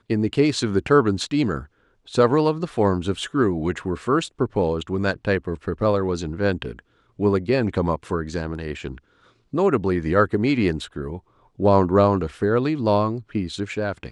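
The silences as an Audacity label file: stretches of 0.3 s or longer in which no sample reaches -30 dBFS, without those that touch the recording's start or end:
1.630000	2.130000	silence
6.790000	7.190000	silence
8.980000	9.540000	silence
11.170000	11.600000	silence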